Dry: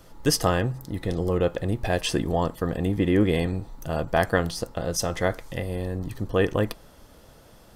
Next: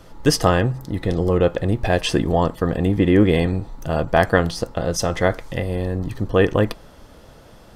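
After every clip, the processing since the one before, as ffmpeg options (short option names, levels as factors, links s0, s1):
-af "highshelf=f=7700:g=-10,volume=2"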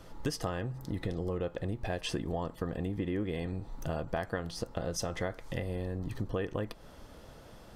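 -af "acompressor=threshold=0.0562:ratio=6,volume=0.501"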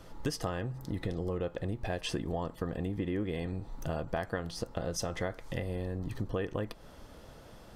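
-af anull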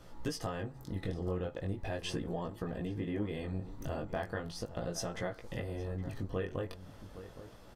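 -filter_complex "[0:a]flanger=delay=16.5:depth=5.3:speed=0.39,asplit=2[s0][s1];[s1]adelay=816.3,volume=0.224,highshelf=f=4000:g=-18.4[s2];[s0][s2]amix=inputs=2:normalize=0"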